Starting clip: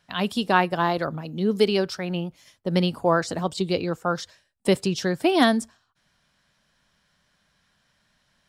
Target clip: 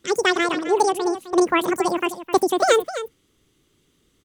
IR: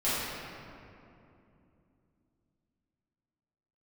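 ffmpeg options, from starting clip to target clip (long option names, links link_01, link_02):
-af "bass=frequency=250:gain=9,treble=frequency=4000:gain=-2,aecho=1:1:519:0.237,asetrate=88200,aresample=44100"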